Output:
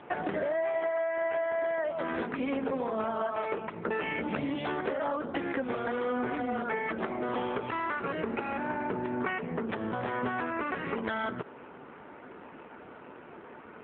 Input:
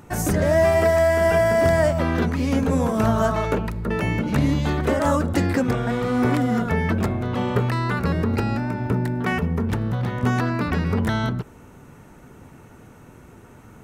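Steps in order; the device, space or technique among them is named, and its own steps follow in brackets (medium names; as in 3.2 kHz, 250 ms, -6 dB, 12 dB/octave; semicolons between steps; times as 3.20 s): 6.79–7.29 s: high-pass 160 Hz 24 dB/octave; dynamic bell 3.8 kHz, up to +4 dB, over -44 dBFS, Q 1.4; voicemail (band-pass 370–3000 Hz; compression 10:1, threshold -33 dBFS, peak gain reduction 17.5 dB; trim +5.5 dB; AMR-NB 7.4 kbps 8 kHz)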